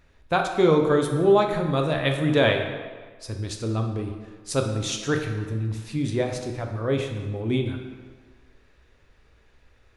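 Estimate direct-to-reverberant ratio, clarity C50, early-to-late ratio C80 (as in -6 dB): 3.0 dB, 5.5 dB, 7.5 dB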